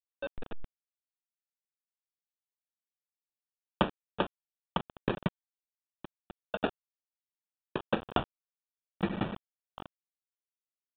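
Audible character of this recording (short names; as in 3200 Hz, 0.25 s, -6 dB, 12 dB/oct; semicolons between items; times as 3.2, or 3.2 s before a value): aliases and images of a low sample rate 2100 Hz, jitter 0%; tremolo saw up 1.6 Hz, depth 40%; a quantiser's noise floor 6-bit, dither none; µ-law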